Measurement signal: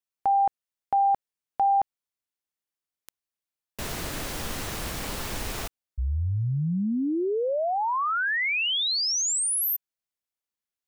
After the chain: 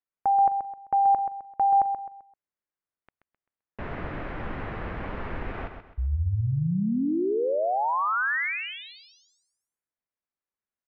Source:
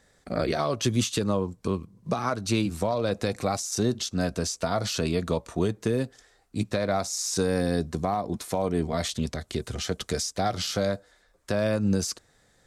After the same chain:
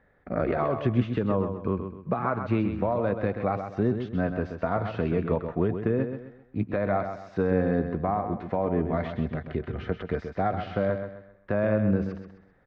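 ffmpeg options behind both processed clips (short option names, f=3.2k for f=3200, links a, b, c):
-af "lowpass=f=2.1k:w=0.5412,lowpass=f=2.1k:w=1.3066,aecho=1:1:130|260|390|520:0.398|0.135|0.046|0.0156"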